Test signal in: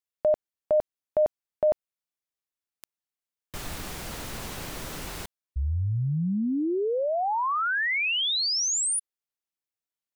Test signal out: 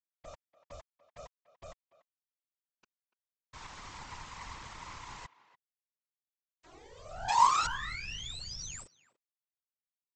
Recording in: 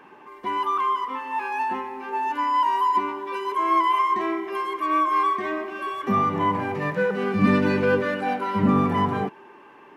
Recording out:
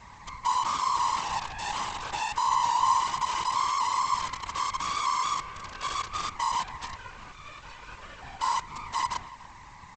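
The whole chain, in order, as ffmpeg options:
-filter_complex "[0:a]acrossover=split=2300[s0][s1];[s0]acompressor=threshold=0.0316:ratio=10:attack=0.99:release=180:knee=6:detection=rms[s2];[s2][s1]amix=inputs=2:normalize=0,alimiter=level_in=1.88:limit=0.0631:level=0:latency=1:release=32,volume=0.531,highpass=f=990:t=q:w=7.6,aresample=16000,acrusher=bits=5:dc=4:mix=0:aa=0.000001,aresample=44100,afftfilt=real='hypot(re,im)*cos(2*PI*random(0))':imag='hypot(re,im)*sin(2*PI*random(1))':win_size=512:overlap=0.75,asplit=2[s3][s4];[s4]adelay=290,highpass=300,lowpass=3400,asoftclip=type=hard:threshold=0.0944,volume=0.141[s5];[s3][s5]amix=inputs=2:normalize=0"

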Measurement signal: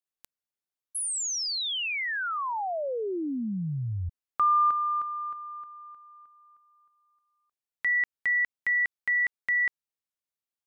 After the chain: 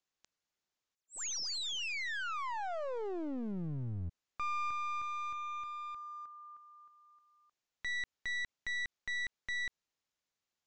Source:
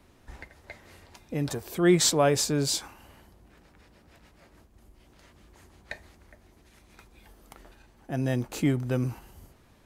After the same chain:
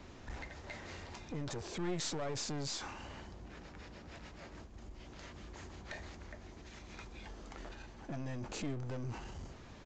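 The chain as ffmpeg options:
-af "acompressor=threshold=0.00631:ratio=3:attack=0.39:release=23:knee=6,aresample=16000,aeval=exprs='clip(val(0),-1,0.00335)':c=same,aresample=44100,volume=2"

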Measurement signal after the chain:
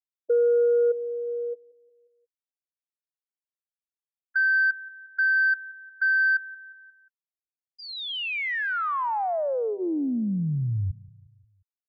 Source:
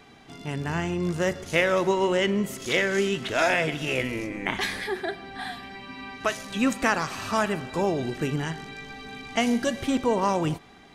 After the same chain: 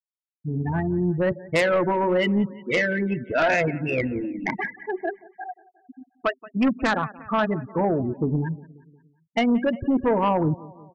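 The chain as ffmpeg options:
-filter_complex "[0:a]adynamicsmooth=sensitivity=1:basefreq=2700,afftfilt=real='re*gte(hypot(re,im),0.1)':imag='im*gte(hypot(re,im),0.1)':win_size=1024:overlap=0.75,bandreject=f=390:w=12,asplit=2[s0][s1];[s1]aecho=0:1:178|356|534|712:0.0794|0.0429|0.0232|0.0125[s2];[s0][s2]amix=inputs=2:normalize=0,aeval=exprs='0.335*(cos(1*acos(clip(val(0)/0.335,-1,1)))-cos(1*PI/2))+0.0944*(cos(5*acos(clip(val(0)/0.335,-1,1)))-cos(5*PI/2))':c=same,volume=0.794"

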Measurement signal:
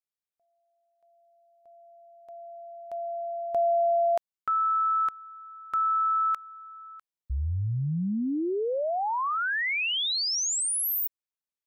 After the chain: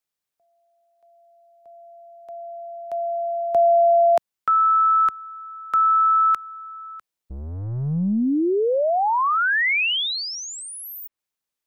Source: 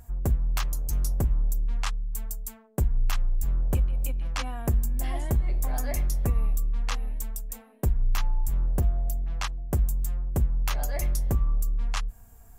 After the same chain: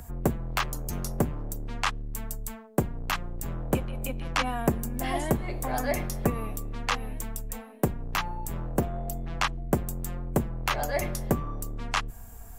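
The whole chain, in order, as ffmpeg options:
-filter_complex "[0:a]acrossover=split=150|580|3400[s0][s1][s2][s3];[s0]aeval=exprs='(tanh(126*val(0)+0.35)-tanh(0.35))/126':c=same[s4];[s3]acompressor=threshold=0.00562:ratio=6:attack=17:release=114:detection=rms[s5];[s4][s1][s2][s5]amix=inputs=4:normalize=0,volume=2.51"

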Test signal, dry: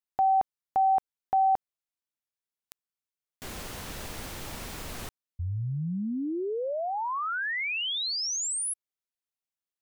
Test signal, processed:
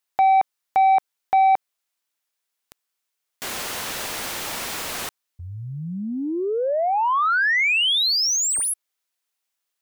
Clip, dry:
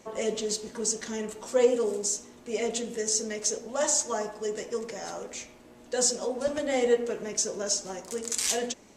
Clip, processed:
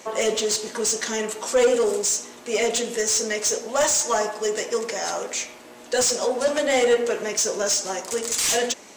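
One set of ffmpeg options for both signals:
-filter_complex "[0:a]crystalizer=i=1.5:c=0,asplit=2[s0][s1];[s1]highpass=f=720:p=1,volume=15.8,asoftclip=type=tanh:threshold=0.75[s2];[s0][s2]amix=inputs=2:normalize=0,lowpass=f=3400:p=1,volume=0.501,volume=0.562"

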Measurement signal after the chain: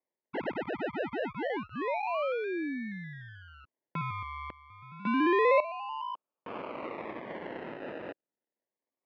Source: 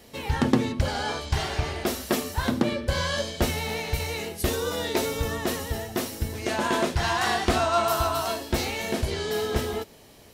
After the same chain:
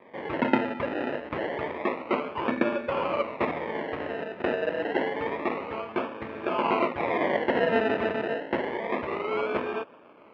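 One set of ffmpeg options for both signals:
-af "acrusher=samples=31:mix=1:aa=0.000001:lfo=1:lforange=18.6:lforate=0.28,highpass=390,equalizer=f=420:t=q:w=4:g=-4,equalizer=f=760:t=q:w=4:g=-7,equalizer=f=1500:t=q:w=4:g=-7,lowpass=f=2300:w=0.5412,lowpass=f=2300:w=1.3066,volume=1.88"

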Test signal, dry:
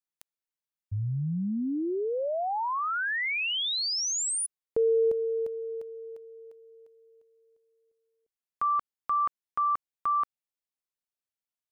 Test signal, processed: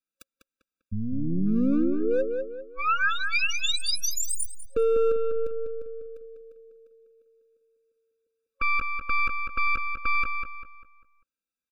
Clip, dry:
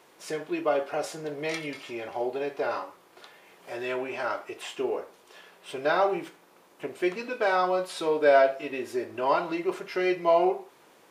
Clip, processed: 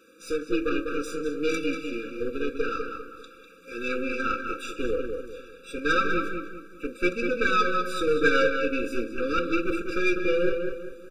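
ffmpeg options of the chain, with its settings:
-filter_complex "[0:a]afftfilt=real='re*(1-between(b*sr/4096,540,1100))':imag='im*(1-between(b*sr/4096,540,1100))':win_size=4096:overlap=0.75,aeval=exprs='0.2*(cos(1*acos(clip(val(0)/0.2,-1,1)))-cos(1*PI/2))+0.0282*(cos(3*acos(clip(val(0)/0.2,-1,1)))-cos(3*PI/2))+0.0224*(cos(6*acos(clip(val(0)/0.2,-1,1)))-cos(6*PI/2))':c=same,lowshelf=f=90:g=-4,aecho=1:1:3.8:0.84,acrossover=split=1400[s0][s1];[s0]asoftclip=type=hard:threshold=0.0473[s2];[s2][s1]amix=inputs=2:normalize=0,highshelf=f=4300:g=-5.5,asplit=2[s3][s4];[s4]adelay=198,lowpass=f=2900:p=1,volume=0.562,asplit=2[s5][s6];[s6]adelay=198,lowpass=f=2900:p=1,volume=0.39,asplit=2[s7][s8];[s8]adelay=198,lowpass=f=2900:p=1,volume=0.39,asplit=2[s9][s10];[s10]adelay=198,lowpass=f=2900:p=1,volume=0.39,asplit=2[s11][s12];[s12]adelay=198,lowpass=f=2900:p=1,volume=0.39[s13];[s5][s7][s9][s11][s13]amix=inputs=5:normalize=0[s14];[s3][s14]amix=inputs=2:normalize=0,afftfilt=real='re*eq(mod(floor(b*sr/1024/570),2),0)':imag='im*eq(mod(floor(b*sr/1024/570),2),0)':win_size=1024:overlap=0.75,volume=2.37"

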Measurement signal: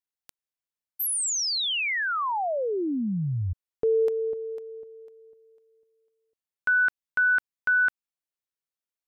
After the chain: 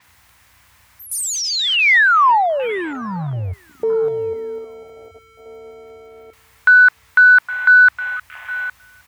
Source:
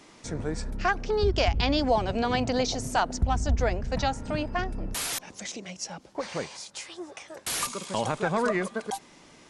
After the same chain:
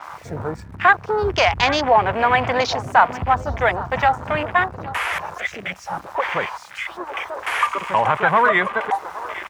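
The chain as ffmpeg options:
-af "aeval=exprs='val(0)+0.5*0.0178*sgn(val(0))':c=same,equalizer=f=250:t=o:w=1:g=-8,equalizer=f=1000:t=o:w=1:g=9,equalizer=f=2000:t=o:w=1:g=9,aecho=1:1:813|1626|2439:0.15|0.0569|0.0216,aeval=exprs='val(0)+0.00282*(sin(2*PI*60*n/s)+sin(2*PI*2*60*n/s)/2+sin(2*PI*3*60*n/s)/3+sin(2*PI*4*60*n/s)/4+sin(2*PI*5*60*n/s)/5)':c=same,aeval=exprs='0.708*(cos(1*acos(clip(val(0)/0.708,-1,1)))-cos(1*PI/2))+0.0398*(cos(5*acos(clip(val(0)/0.708,-1,1)))-cos(5*PI/2))':c=same,afwtdn=0.0447,highpass=f=83:w=0.5412,highpass=f=83:w=1.3066,adynamicequalizer=threshold=0.0126:dfrequency=7600:dqfactor=0.7:tfrequency=7600:tqfactor=0.7:attack=5:release=100:ratio=0.375:range=3.5:mode=cutabove:tftype=highshelf,volume=1.33"

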